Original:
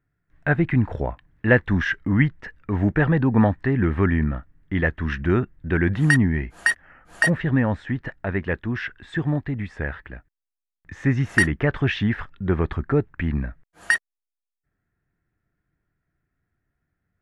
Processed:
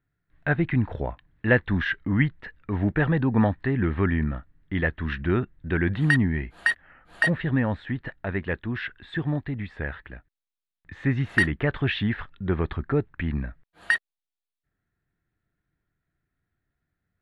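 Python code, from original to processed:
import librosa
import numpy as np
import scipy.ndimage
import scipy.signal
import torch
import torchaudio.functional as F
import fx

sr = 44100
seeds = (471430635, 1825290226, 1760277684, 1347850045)

y = fx.high_shelf_res(x, sr, hz=4800.0, db=-6.0, q=3.0)
y = y * librosa.db_to_amplitude(-3.5)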